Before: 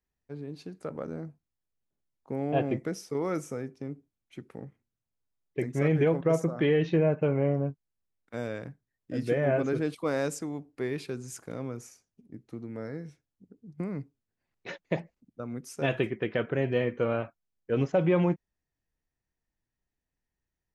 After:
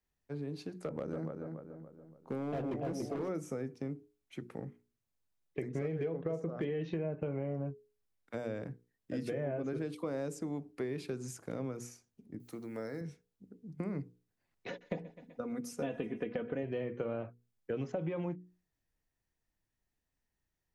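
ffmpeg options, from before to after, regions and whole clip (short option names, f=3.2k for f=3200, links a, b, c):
-filter_complex "[0:a]asettb=1/sr,asplit=3[a][b][c];[a]atrim=end=0.824[d];[b]atrim=start=0.82:end=3.29,asetpts=PTS-STARTPTS,afade=t=in:d=0.004:c=qsin,afade=t=out:st=2.466:d=0.004:c=qsin,asplit=2[e][f];[f]adelay=285,lowpass=f=1.8k:p=1,volume=-6dB,asplit=2[g][h];[h]adelay=285,lowpass=f=1.8k:p=1,volume=0.47,asplit=2[i][j];[j]adelay=285,lowpass=f=1.8k:p=1,volume=0.47,asplit=2[k][l];[l]adelay=285,lowpass=f=1.8k:p=1,volume=0.47,asplit=2[m][n];[n]adelay=285,lowpass=f=1.8k:p=1,volume=0.47,asplit=2[o][p];[p]adelay=285,lowpass=f=1.8k:p=1,volume=0.47[q];[e][g][i][k][m][o][q]amix=inputs=7:normalize=0,atrim=end_sample=108927,asoftclip=type=hard:threshold=-27dB[r];[c]atrim=start=3.286[s];[d][r]acrossfade=d=0.004:c1=hsin:c2=qsin[t];[t][s]acrossfade=d=0.004:c1=qsin:c2=hsin,asettb=1/sr,asplit=3[u][v][w];[u]atrim=end=5.684[x];[v]atrim=start=5.68:end=6.65,asetpts=PTS-STARTPTS,afade=t=in:d=0.004:c=qsin,afade=t=out:st=0.966:d=0.004:c=qsin,equalizer=f=450:t=o:w=0.2:g=7.5,adynamicsmooth=sensitivity=8:basefreq=4.6k,bandreject=f=930:w=17[y];[w]atrim=start=6.646[z];[x][y]acrossfade=d=0.004:c1=hsin:c2=qsin[aa];[aa][z]acrossfade=d=0.004:c1=qsin:c2=hsin,asettb=1/sr,asplit=3[ab][ac][ad];[ab]atrim=end=12.404[ae];[ac]atrim=start=12.4:end=13.01,asetpts=PTS-STARTPTS,afade=t=in:d=0.004:c=qsin,afade=t=out:st=0.606:d=0.004:c=qsin,aemphasis=mode=production:type=bsi,acompressor=mode=upward:threshold=-56dB:ratio=2.5:attack=3.2:release=140:knee=2.83:detection=peak[af];[ad]atrim=start=13.006[ag];[ae][af]acrossfade=d=0.004:c1=hsin:c2=qsin[ah];[ah][ag]acrossfade=d=0.004:c1=qsin:c2=hsin,asettb=1/sr,asplit=3[ai][aj][ak];[ai]atrim=end=14.684[al];[aj]atrim=start=14.68:end=16.63,asetpts=PTS-STARTPTS,afade=t=in:d=0.004:c=qsin,afade=t=out:st=1.946:d=0.004:c=qsin,aecho=1:1:4.1:0.63,atrim=end_sample=85995,aecho=1:1:126|252|378|504:0.0708|0.0425|0.0255|0.0153,atrim=end_sample=85995[am];[ak]atrim=start=16.626[an];[al][am]acrossfade=d=0.004:c1=hsin:c2=qsin[ao];[ao][an]acrossfade=d=0.004:c1=qsin:c2=hsin,acrossover=split=95|720[ap][aq][ar];[ap]acompressor=threshold=-58dB:ratio=4[as];[aq]acompressor=threshold=-31dB:ratio=4[at];[ar]acompressor=threshold=-48dB:ratio=4[au];[as][at][au]amix=inputs=3:normalize=0,bandreject=f=60:t=h:w=6,bandreject=f=120:t=h:w=6,bandreject=f=180:t=h:w=6,bandreject=f=240:t=h:w=6,bandreject=f=300:t=h:w=6,bandreject=f=360:t=h:w=6,bandreject=f=420:t=h:w=6,bandreject=f=480:t=h:w=6,acompressor=threshold=-35dB:ratio=2.5,volume=1dB"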